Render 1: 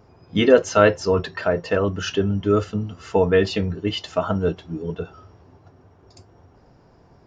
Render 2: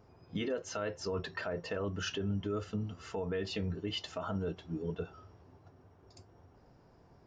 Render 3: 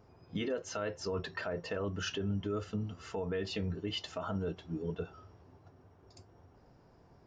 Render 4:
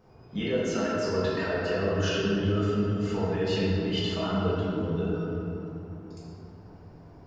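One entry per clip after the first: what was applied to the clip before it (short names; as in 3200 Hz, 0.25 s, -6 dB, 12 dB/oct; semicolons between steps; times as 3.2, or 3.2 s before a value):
compressor 10:1, threshold -20 dBFS, peak gain reduction 13 dB; limiter -18 dBFS, peak gain reduction 8.5 dB; gain -8.5 dB
nothing audible
shoebox room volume 140 m³, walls hard, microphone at 1.1 m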